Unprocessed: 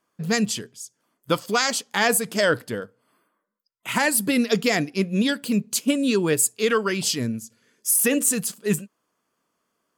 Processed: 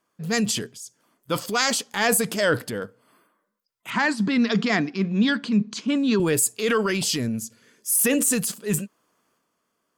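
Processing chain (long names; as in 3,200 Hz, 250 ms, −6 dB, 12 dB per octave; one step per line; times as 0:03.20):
transient designer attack −5 dB, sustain +6 dB
0:03.90–0:06.20: loudspeaker in its box 160–5,500 Hz, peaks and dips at 210 Hz +6 dB, 530 Hz −8 dB, 1,100 Hz +5 dB, 1,600 Hz +3 dB, 2,700 Hz −4 dB, 4,900 Hz −3 dB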